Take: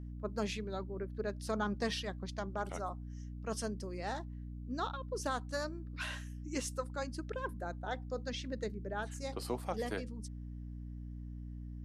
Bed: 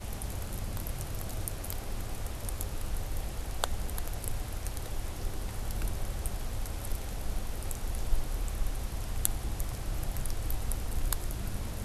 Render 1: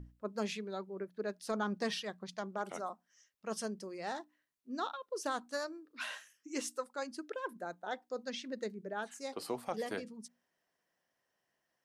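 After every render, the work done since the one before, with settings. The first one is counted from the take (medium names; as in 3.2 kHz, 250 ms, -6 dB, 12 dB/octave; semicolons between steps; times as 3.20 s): hum notches 60/120/180/240/300 Hz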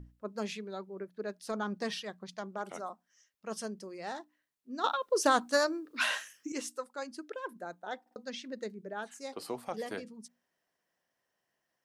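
4.84–6.52 s: gain +11 dB; 8.01 s: stutter in place 0.05 s, 3 plays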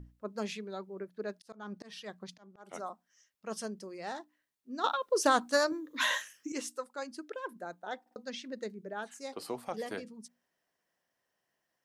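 1.34–2.73 s: slow attack 335 ms; 5.71–6.22 s: rippled EQ curve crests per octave 1.1, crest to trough 11 dB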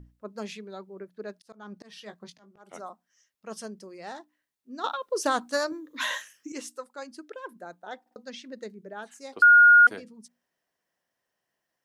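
1.96–2.61 s: doubling 19 ms -7 dB; 9.42–9.87 s: bleep 1.43 kHz -11 dBFS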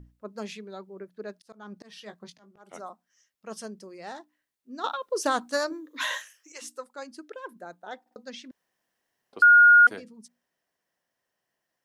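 5.69–6.61 s: high-pass 170 Hz -> 600 Hz 24 dB/octave; 8.51–9.33 s: room tone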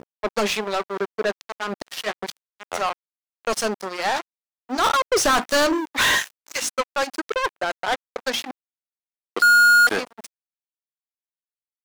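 crossover distortion -45 dBFS; overdrive pedal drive 34 dB, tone 7.5 kHz, clips at -11 dBFS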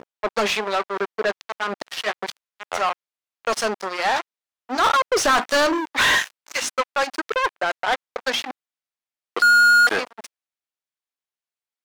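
vibrato 10 Hz 5.1 cents; overdrive pedal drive 10 dB, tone 3.8 kHz, clips at -11 dBFS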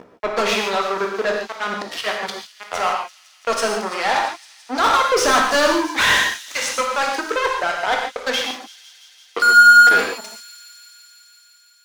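feedback echo behind a high-pass 169 ms, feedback 81%, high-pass 4.4 kHz, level -13.5 dB; gated-style reverb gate 170 ms flat, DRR 0.5 dB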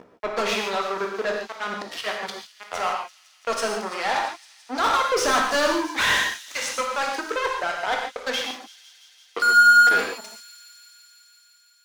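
trim -5 dB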